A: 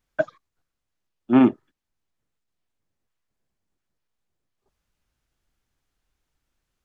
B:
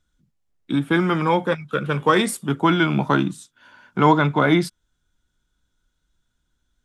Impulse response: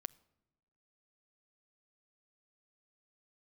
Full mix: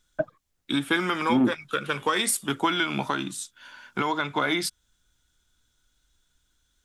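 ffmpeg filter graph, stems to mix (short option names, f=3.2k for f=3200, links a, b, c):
-filter_complex "[0:a]lowpass=f=1.1k:p=1,lowshelf=f=270:g=7,volume=-3dB[a];[1:a]tiltshelf=f=1.5k:g=-6.5,acompressor=threshold=-21dB:ratio=4,equalizer=f=160:w=4.2:g=-11.5,volume=2.5dB[b];[a][b]amix=inputs=2:normalize=0,alimiter=limit=-13dB:level=0:latency=1:release=327"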